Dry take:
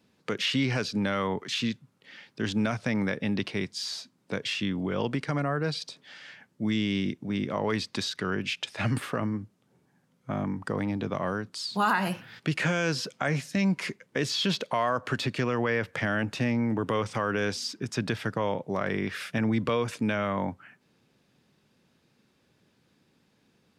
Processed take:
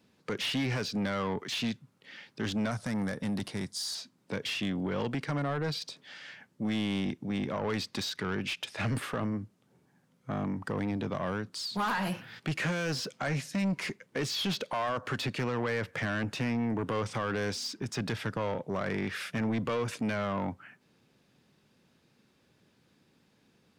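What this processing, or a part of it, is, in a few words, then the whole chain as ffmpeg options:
saturation between pre-emphasis and de-emphasis: -filter_complex "[0:a]highshelf=f=3.8k:g=7,asoftclip=type=tanh:threshold=-25.5dB,highshelf=f=3.8k:g=-7,asettb=1/sr,asplit=3[a][b][c];[a]atrim=end=2.714[d];[b]atrim=start=2.71:end=3.95,asetpts=PTS-STARTPTS,afade=t=in:d=0.004:c=qsin,afade=t=out:st=1.236:d=0.004:c=qsin,equalizer=f=400:t=o:w=0.67:g=-5,equalizer=f=2.5k:t=o:w=0.67:g=-9,equalizer=f=10k:t=o:w=0.67:g=11[e];[c]atrim=start=3.946[f];[d][e]acrossfade=d=0.004:c1=hsin:c2=qsin[g];[g][f]acrossfade=d=0.004:c1=qsin:c2=hsin"

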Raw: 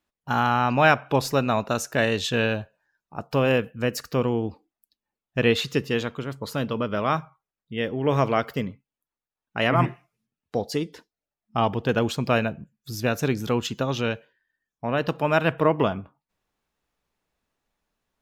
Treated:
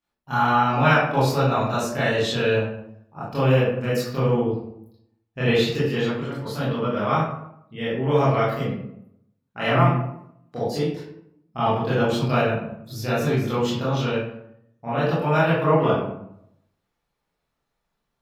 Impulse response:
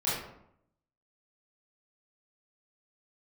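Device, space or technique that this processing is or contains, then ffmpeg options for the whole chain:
bathroom: -filter_complex "[1:a]atrim=start_sample=2205[a];[0:a][a]afir=irnorm=-1:irlink=0,asettb=1/sr,asplit=3[b][c][d];[b]atrim=end=4.424[e];[c]atrim=start=4.42:end=5.46,asetpts=PTS-STARTPTS,afade=t=in:d=0.004:c=qsin,afade=t=out:st=1.036:d=0.004:c=qsin,highshelf=f=8.1k:g=-5.5[f];[d]atrim=start=5.456[g];[e][f]acrossfade=d=0.004:c1=hsin:c2=qsin[h];[h][g]acrossfade=d=0.004:c1=qsin:c2=hsin,volume=-7.5dB"

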